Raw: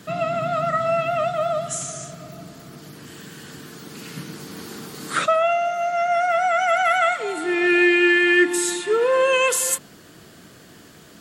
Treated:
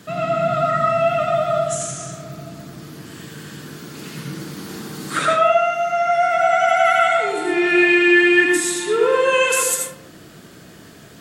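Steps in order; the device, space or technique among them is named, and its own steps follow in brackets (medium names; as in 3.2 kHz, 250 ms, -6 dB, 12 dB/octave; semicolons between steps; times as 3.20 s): bathroom (reverberation RT60 0.60 s, pre-delay 73 ms, DRR 0 dB)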